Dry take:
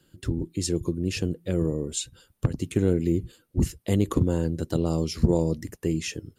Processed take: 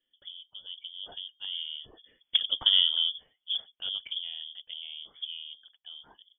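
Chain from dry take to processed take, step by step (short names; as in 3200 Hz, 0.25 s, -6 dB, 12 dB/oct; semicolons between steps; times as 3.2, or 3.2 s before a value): Doppler pass-by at 2.62, 14 m/s, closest 4.1 m; inverted band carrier 3400 Hz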